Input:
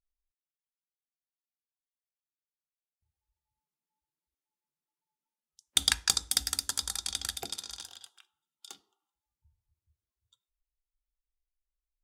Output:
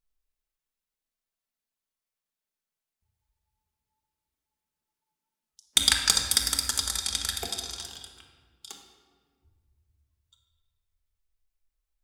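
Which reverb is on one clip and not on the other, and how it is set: shoebox room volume 1800 m³, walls mixed, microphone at 1.5 m; gain +3.5 dB

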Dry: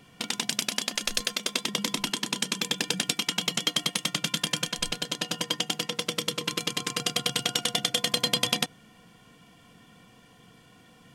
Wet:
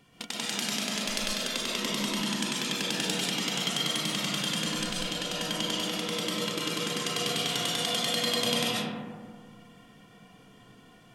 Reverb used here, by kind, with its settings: digital reverb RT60 1.8 s, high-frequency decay 0.3×, pre-delay 95 ms, DRR -6 dB; gain -6.5 dB

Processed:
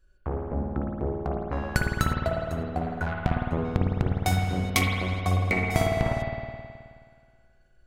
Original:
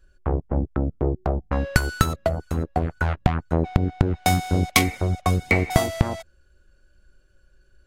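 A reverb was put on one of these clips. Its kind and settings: spring tank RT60 2 s, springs 53 ms, chirp 30 ms, DRR -1 dB; gain -7 dB

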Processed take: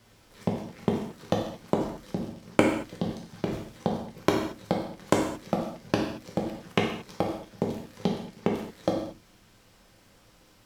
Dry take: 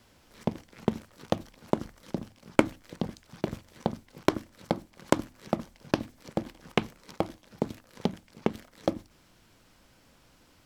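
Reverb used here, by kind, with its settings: non-linear reverb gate 0.25 s falling, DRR -1 dB; gain -1 dB

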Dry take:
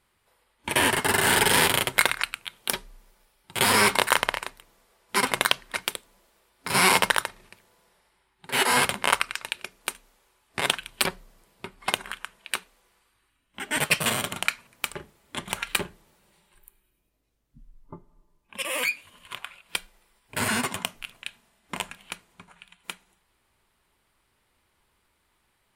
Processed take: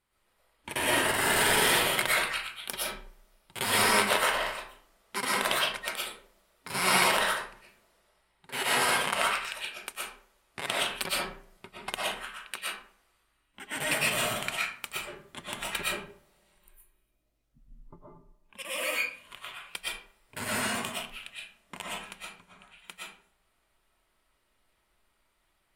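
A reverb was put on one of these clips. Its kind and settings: digital reverb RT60 0.5 s, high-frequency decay 0.65×, pre-delay 80 ms, DRR -6.5 dB; gain -10 dB

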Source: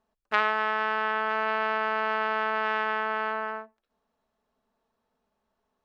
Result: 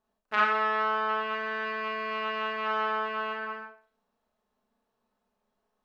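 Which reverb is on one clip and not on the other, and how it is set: Schroeder reverb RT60 0.4 s, combs from 30 ms, DRR -2.5 dB; gain -5.5 dB

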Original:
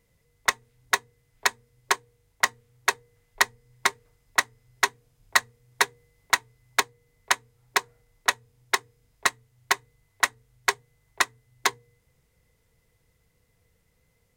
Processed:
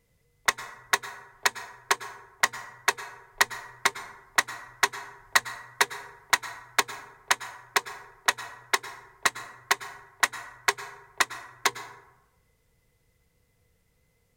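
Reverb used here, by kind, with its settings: plate-style reverb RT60 1 s, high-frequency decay 0.45×, pre-delay 90 ms, DRR 13 dB; gain -1 dB

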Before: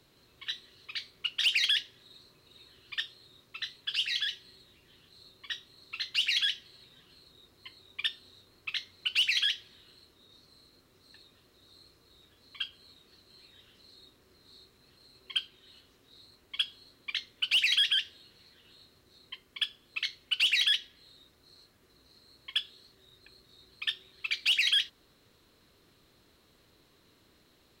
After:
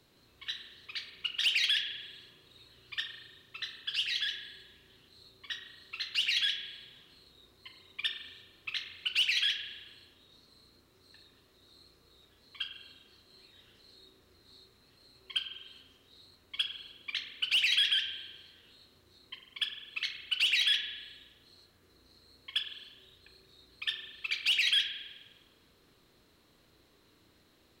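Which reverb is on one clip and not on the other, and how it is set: spring tank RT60 1.2 s, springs 34 ms, chirp 25 ms, DRR 5.5 dB; gain -2 dB

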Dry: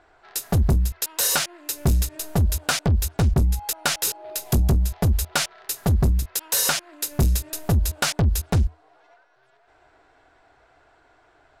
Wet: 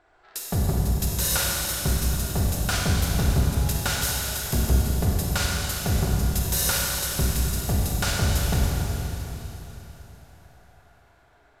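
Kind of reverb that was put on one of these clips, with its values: Schroeder reverb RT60 3.7 s, combs from 31 ms, DRR -3.5 dB; gain -6 dB

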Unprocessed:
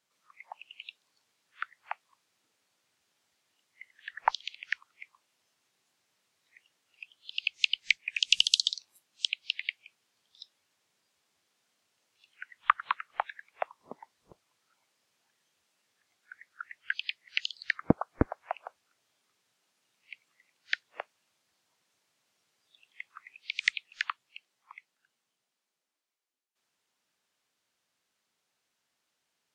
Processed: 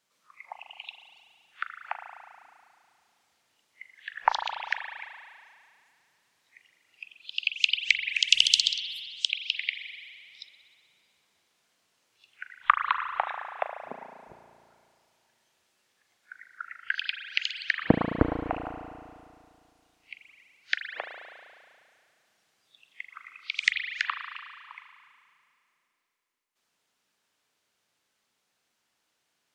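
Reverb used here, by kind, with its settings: spring tank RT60 2.3 s, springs 35 ms, chirp 30 ms, DRR 5 dB; gain +3 dB

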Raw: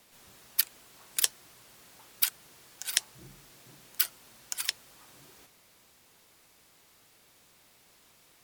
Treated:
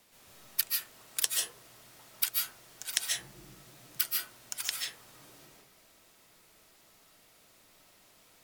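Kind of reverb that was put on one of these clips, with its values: digital reverb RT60 0.62 s, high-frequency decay 0.3×, pre-delay 0.105 s, DRR -1.5 dB; gain -3.5 dB

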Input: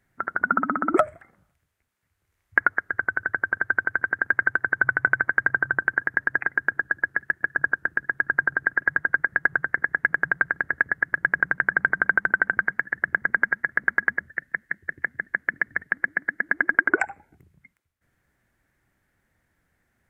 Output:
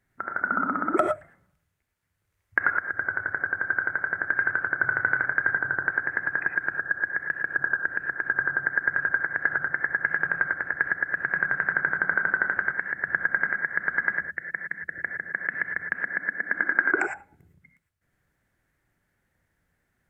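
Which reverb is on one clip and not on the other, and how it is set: non-linear reverb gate 0.13 s rising, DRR 3.5 dB; gain -4 dB

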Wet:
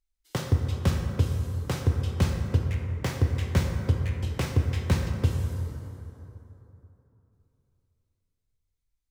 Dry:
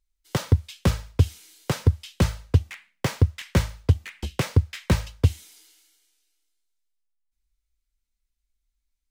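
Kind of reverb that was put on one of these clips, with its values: plate-style reverb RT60 3.3 s, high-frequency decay 0.35×, DRR 2 dB; gain -5.5 dB

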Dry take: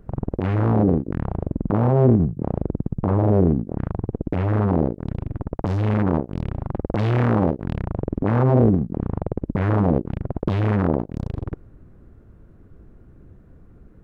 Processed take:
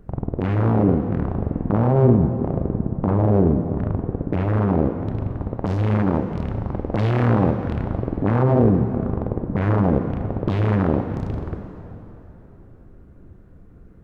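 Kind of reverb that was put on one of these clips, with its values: plate-style reverb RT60 3.6 s, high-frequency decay 0.75×, DRR 6.5 dB

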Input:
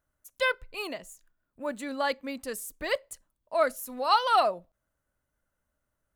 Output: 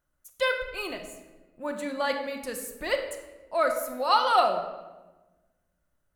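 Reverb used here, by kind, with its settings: shoebox room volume 720 m³, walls mixed, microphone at 0.93 m

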